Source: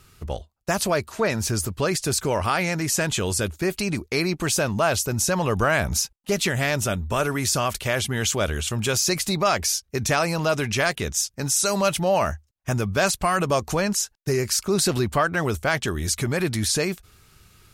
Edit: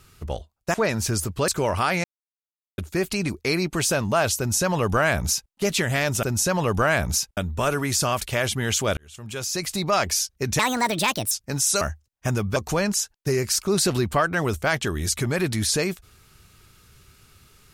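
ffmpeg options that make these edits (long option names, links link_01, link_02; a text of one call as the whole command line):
ffmpeg -i in.wav -filter_complex "[0:a]asplit=12[link_01][link_02][link_03][link_04][link_05][link_06][link_07][link_08][link_09][link_10][link_11][link_12];[link_01]atrim=end=0.742[link_13];[link_02]atrim=start=1.148:end=1.892[link_14];[link_03]atrim=start=2.148:end=2.71,asetpts=PTS-STARTPTS,afade=type=out:start_time=0.558:duration=0.004:curve=hsin[link_15];[link_04]atrim=start=2.71:end=3.45,asetpts=PTS-STARTPTS,volume=0[link_16];[link_05]atrim=start=3.45:end=6.902,asetpts=PTS-STARTPTS,afade=type=in:duration=0.004:curve=hsin[link_17];[link_06]atrim=start=5.048:end=6.192[link_18];[link_07]atrim=start=6.898:end=8.5,asetpts=PTS-STARTPTS,afade=type=out:start_time=1.598:duration=0.004:curve=hsin[link_19];[link_08]atrim=start=8.5:end=10.124,asetpts=PTS-STARTPTS,afade=type=in:duration=1.06[link_20];[link_09]atrim=start=10.12:end=11.21,asetpts=PTS-STARTPTS,asetrate=66591,aresample=44100[link_21];[link_10]atrim=start=11.206:end=11.712[link_22];[link_11]atrim=start=12.238:end=12.992[link_23];[link_12]atrim=start=13.568[link_24];[link_13][link_14]acrossfade=duration=0.004:curve1=hsin:curve2=hsin[link_25];[link_15][link_16][link_17]concat=n=3:v=0:a=1[link_26];[link_25][link_26]acrossfade=duration=0.004:curve1=hsin:curve2=hsin[link_27];[link_27][link_18]acrossfade=duration=0.004:curve1=hsin:curve2=hsin[link_28];[link_19][link_20]concat=n=2:v=0:a=1[link_29];[link_28][link_29]acrossfade=duration=0.004:curve1=hsin:curve2=hsin[link_30];[link_30][link_21]acrossfade=duration=0.004:curve1=hsin:curve2=hsin[link_31];[link_31][link_22]acrossfade=duration=0.004:curve1=hsin:curve2=hsin[link_32];[link_32][link_23]acrossfade=duration=0.004:curve1=hsin:curve2=hsin[link_33];[link_33][link_24]acrossfade=duration=0.004:curve1=hsin:curve2=hsin" out.wav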